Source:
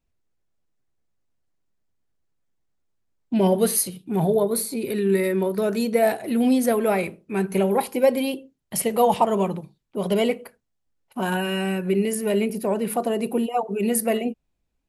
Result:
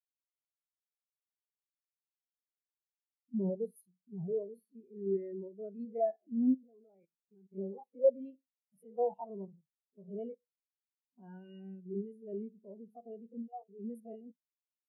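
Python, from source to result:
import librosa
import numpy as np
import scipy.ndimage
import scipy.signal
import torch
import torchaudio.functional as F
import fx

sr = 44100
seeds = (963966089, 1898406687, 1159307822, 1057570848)

y = fx.spec_steps(x, sr, hold_ms=50)
y = fx.level_steps(y, sr, step_db=15, at=(6.54, 7.53))
y = fx.spectral_expand(y, sr, expansion=2.5)
y = y * 10.0 ** (-8.0 / 20.0)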